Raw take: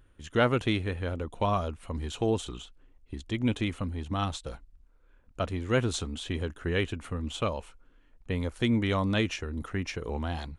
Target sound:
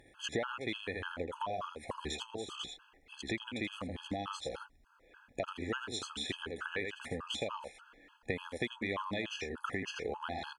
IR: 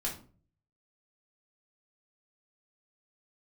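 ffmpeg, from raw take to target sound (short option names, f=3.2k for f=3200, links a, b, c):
-af "highpass=f=790:p=1,aemphasis=mode=reproduction:type=cd,aecho=1:1:81:0.501,acompressor=threshold=-48dB:ratio=6,afftfilt=real='re*gt(sin(2*PI*3.4*pts/sr)*(1-2*mod(floor(b*sr/1024/840),2)),0)':imag='im*gt(sin(2*PI*3.4*pts/sr)*(1-2*mod(floor(b*sr/1024/840),2)),0)':win_size=1024:overlap=0.75,volume=15dB"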